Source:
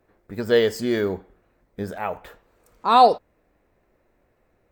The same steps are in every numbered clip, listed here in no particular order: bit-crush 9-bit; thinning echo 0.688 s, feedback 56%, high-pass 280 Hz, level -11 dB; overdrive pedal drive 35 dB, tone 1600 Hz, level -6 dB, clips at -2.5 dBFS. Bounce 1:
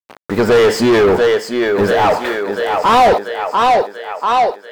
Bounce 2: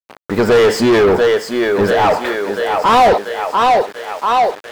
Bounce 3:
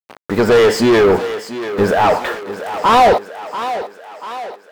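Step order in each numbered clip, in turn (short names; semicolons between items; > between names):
bit-crush > thinning echo > overdrive pedal; thinning echo > bit-crush > overdrive pedal; bit-crush > overdrive pedal > thinning echo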